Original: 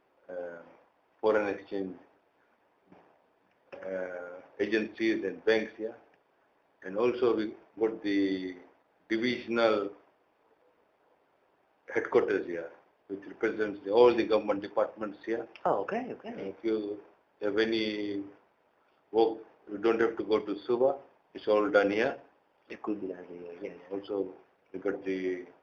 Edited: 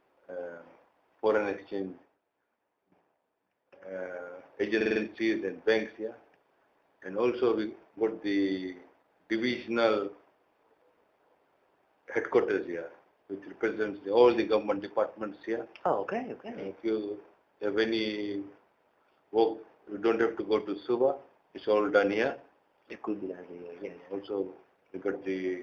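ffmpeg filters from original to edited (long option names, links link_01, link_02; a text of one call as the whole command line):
ffmpeg -i in.wav -filter_complex "[0:a]asplit=7[link_01][link_02][link_03][link_04][link_05][link_06][link_07];[link_01]atrim=end=2.18,asetpts=PTS-STARTPTS,afade=type=out:start_time=1.85:duration=0.33:silence=0.281838[link_08];[link_02]atrim=start=2.18:end=3.77,asetpts=PTS-STARTPTS,volume=-11dB[link_09];[link_03]atrim=start=3.77:end=4.812,asetpts=PTS-STARTPTS,afade=type=in:duration=0.33:silence=0.281838[link_10];[link_04]atrim=start=4.758:end=4.812[link_11];[link_05]atrim=start=4.758:end=4.812[link_12];[link_06]atrim=start=4.758:end=4.812[link_13];[link_07]atrim=start=4.758[link_14];[link_08][link_09][link_10]concat=n=3:v=0:a=1[link_15];[link_15][link_11]acrossfade=duration=0.004:curve1=hsin:curve2=hsin[link_16];[link_16][link_12]acrossfade=duration=0.004:curve1=hsin:curve2=hsin[link_17];[link_17][link_13]acrossfade=duration=0.004:curve1=hsin:curve2=hsin[link_18];[link_18][link_14]acrossfade=duration=0.004:curve1=hsin:curve2=hsin" out.wav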